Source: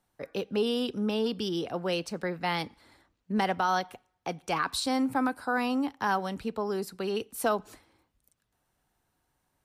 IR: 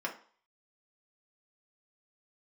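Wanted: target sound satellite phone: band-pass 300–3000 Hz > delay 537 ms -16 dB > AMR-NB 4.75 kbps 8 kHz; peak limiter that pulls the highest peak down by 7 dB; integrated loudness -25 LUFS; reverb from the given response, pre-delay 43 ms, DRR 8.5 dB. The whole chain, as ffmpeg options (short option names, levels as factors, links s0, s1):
-filter_complex "[0:a]alimiter=limit=0.0708:level=0:latency=1,asplit=2[s0][s1];[1:a]atrim=start_sample=2205,adelay=43[s2];[s1][s2]afir=irnorm=-1:irlink=0,volume=0.224[s3];[s0][s3]amix=inputs=2:normalize=0,highpass=300,lowpass=3000,aecho=1:1:537:0.158,volume=3.55" -ar 8000 -c:a libopencore_amrnb -b:a 4750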